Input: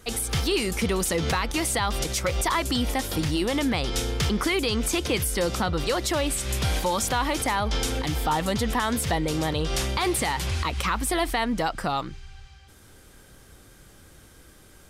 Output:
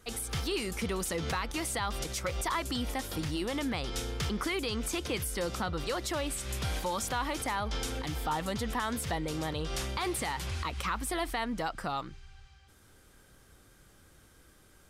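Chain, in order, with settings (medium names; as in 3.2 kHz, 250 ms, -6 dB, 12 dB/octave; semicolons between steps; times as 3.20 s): peaking EQ 1.3 kHz +2.5 dB; trim -8.5 dB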